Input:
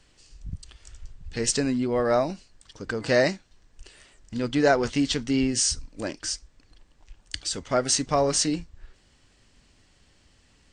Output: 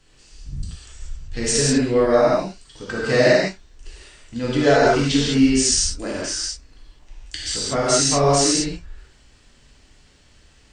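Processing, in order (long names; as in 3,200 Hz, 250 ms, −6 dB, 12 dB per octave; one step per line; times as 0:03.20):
reverb whose tail is shaped and stops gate 230 ms flat, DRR −7.5 dB
level −1.5 dB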